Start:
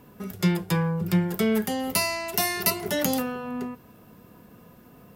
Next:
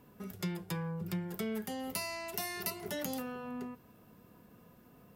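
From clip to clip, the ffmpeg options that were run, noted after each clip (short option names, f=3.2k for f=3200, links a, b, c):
-af "acompressor=threshold=-29dB:ratio=2,volume=-8.5dB"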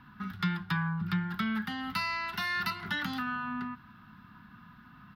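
-af "firequalizer=gain_entry='entry(230,0);entry(490,-28);entry(830,-1);entry(1400,12);entry(2300,0);entry(3800,4);entry(7200,-23);entry(13000,-18)':delay=0.05:min_phase=1,volume=6dB"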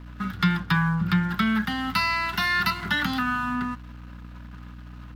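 -af "aeval=exprs='sgn(val(0))*max(abs(val(0))-0.00168,0)':c=same,aeval=exprs='val(0)+0.00355*(sin(2*PI*60*n/s)+sin(2*PI*2*60*n/s)/2+sin(2*PI*3*60*n/s)/3+sin(2*PI*4*60*n/s)/4+sin(2*PI*5*60*n/s)/5)':c=same,volume=9dB"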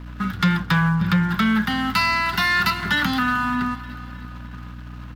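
-af "aecho=1:1:309|618|927|1236|1545:0.133|0.0733|0.0403|0.0222|0.0122,asoftclip=type=tanh:threshold=-16.5dB,volume=5.5dB"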